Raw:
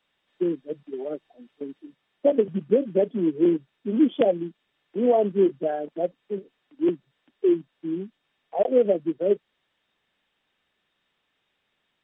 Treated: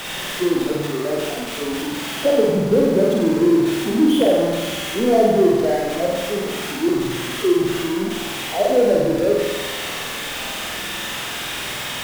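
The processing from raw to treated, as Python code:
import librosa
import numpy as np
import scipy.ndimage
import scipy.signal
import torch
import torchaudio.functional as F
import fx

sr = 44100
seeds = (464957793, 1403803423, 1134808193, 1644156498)

y = x + 0.5 * 10.0 ** (-25.5 / 20.0) * np.sign(x)
y = fx.room_flutter(y, sr, wall_m=8.2, rt60_s=1.4)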